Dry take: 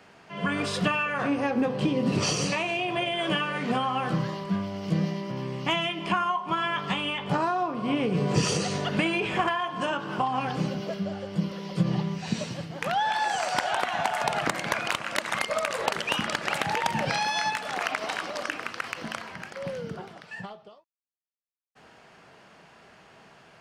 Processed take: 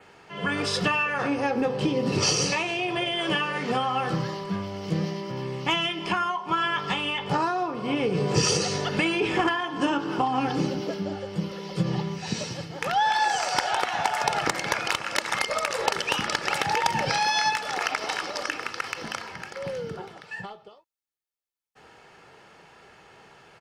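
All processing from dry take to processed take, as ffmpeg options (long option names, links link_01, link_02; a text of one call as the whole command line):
ffmpeg -i in.wav -filter_complex "[0:a]asettb=1/sr,asplit=3[link_01][link_02][link_03];[link_01]atrim=end=9.204[link_04];[link_02]atrim=start=9.2:end=11.16,asetpts=PTS-STARTPTS,afade=type=in:duration=0.004:curve=qsin,afade=type=out:start_time=1.956:duration=0.004:curve=qsin,equalizer=frequency=290:width_type=o:width=0.36:gain=13.5,aeval=exprs='val(0)+0.002*sin(2*PI*870*n/s)':channel_layout=same[link_05];[link_03]atrim=start=11.156[link_06];[link_04][link_05]acrossfade=duration=0.004:curve1=hsin:curve2=qsin[link_07];[link_07][link_06]acrossfade=duration=0.004:curve1=qsin:curve2=hsin,adynamicequalizer=threshold=0.00224:dfrequency=5300:dqfactor=3.2:tfrequency=5300:tqfactor=3.2:attack=5:release=100:ratio=0.375:range=3.5:mode=boostabove:tftype=bell,aecho=1:1:2.3:0.39,volume=1dB" out.wav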